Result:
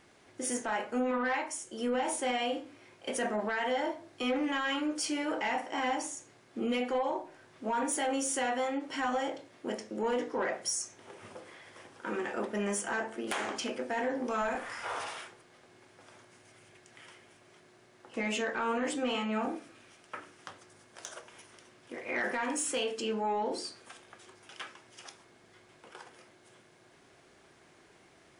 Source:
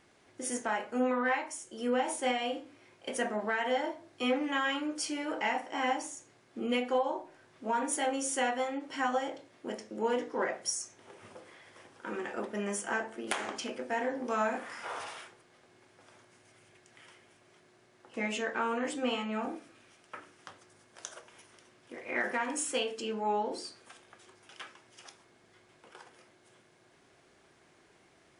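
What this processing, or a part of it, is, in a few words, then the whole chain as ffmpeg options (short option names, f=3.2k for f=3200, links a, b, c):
soft clipper into limiter: -filter_complex "[0:a]asoftclip=type=tanh:threshold=-22dB,alimiter=level_in=3.5dB:limit=-24dB:level=0:latency=1:release=12,volume=-3.5dB,asplit=3[a][b][c];[a]afade=t=out:st=14.41:d=0.02[d];[b]asubboost=boost=7.5:cutoff=68,afade=t=in:st=14.41:d=0.02,afade=t=out:st=14.94:d=0.02[e];[c]afade=t=in:st=14.94:d=0.02[f];[d][e][f]amix=inputs=3:normalize=0,volume=3dB"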